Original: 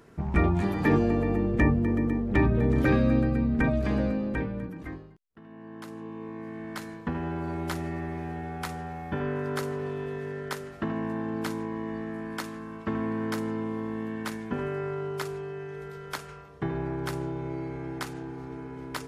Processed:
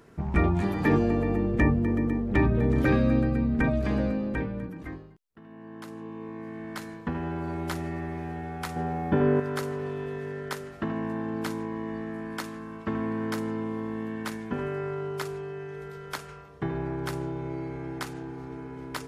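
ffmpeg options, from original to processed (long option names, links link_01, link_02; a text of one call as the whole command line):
ffmpeg -i in.wav -filter_complex "[0:a]asettb=1/sr,asplit=3[link_01][link_02][link_03];[link_01]atrim=end=8.764[link_04];[link_02]atrim=start=8.76:end=9.4,asetpts=PTS-STARTPTS,afade=type=in:duration=0.004:curve=qsin,afade=type=out:start_time=0.636:duration=0.004:curve=qsin,equalizer=frequency=310:width=0.37:gain=9.5[link_05];[link_03]atrim=start=9.396[link_06];[link_04][link_05]acrossfade=duration=0.004:curve1=hsin:curve2=qsin[link_07];[link_07][link_06]acrossfade=duration=0.004:curve1=qsin:curve2=hsin" out.wav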